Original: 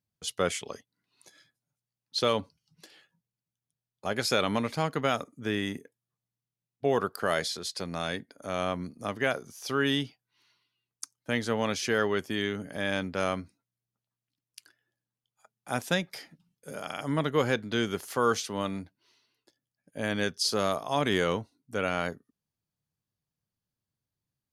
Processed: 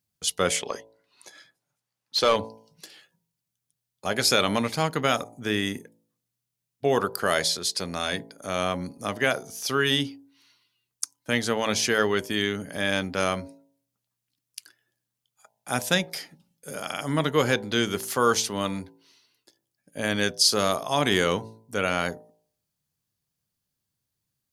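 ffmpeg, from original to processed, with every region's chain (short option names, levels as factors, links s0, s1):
-filter_complex "[0:a]asettb=1/sr,asplit=3[s0][s1][s2];[s0]atrim=end=0.564[s3];[s1]atrim=start=0.56:end=2.36,asetpts=PTS-STARTPTS,afade=t=in:d=0.004:c=qsin,afade=t=out:st=1.796:d=0.004:c=qsin,equalizer=f=3100:t=o:w=2.2:g=-3,asplit=2[s4][s5];[s5]highpass=f=720:p=1,volume=5.62,asoftclip=type=tanh:threshold=0.2[s6];[s4][s6]amix=inputs=2:normalize=0,lowpass=f=2000:p=1,volume=0.501[s7];[s2]atrim=start=2.356[s8];[s3][s7]acrossfade=d=0.004:c1=hsin:c2=qsin[s9];[s9][s8]acrossfade=d=0.004:c1=qsin:c2=hsin,highshelf=f=3600:g=7.5,bandreject=f=55.48:t=h:w=4,bandreject=f=110.96:t=h:w=4,bandreject=f=166.44:t=h:w=4,bandreject=f=221.92:t=h:w=4,bandreject=f=277.4:t=h:w=4,bandreject=f=332.88:t=h:w=4,bandreject=f=388.36:t=h:w=4,bandreject=f=443.84:t=h:w=4,bandreject=f=499.32:t=h:w=4,bandreject=f=554.8:t=h:w=4,bandreject=f=610.28:t=h:w=4,bandreject=f=665.76:t=h:w=4,bandreject=f=721.24:t=h:w=4,bandreject=f=776.72:t=h:w=4,bandreject=f=832.2:t=h:w=4,bandreject=f=887.68:t=h:w=4,bandreject=f=943.16:t=h:w=4,bandreject=f=998.64:t=h:w=4,volume=1.5"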